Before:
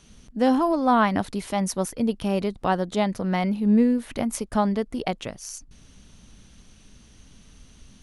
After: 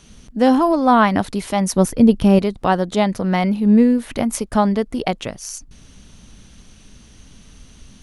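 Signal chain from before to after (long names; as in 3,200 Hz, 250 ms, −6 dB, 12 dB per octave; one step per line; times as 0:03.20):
0:01.76–0:02.39: low-shelf EQ 400 Hz +9 dB
level +6 dB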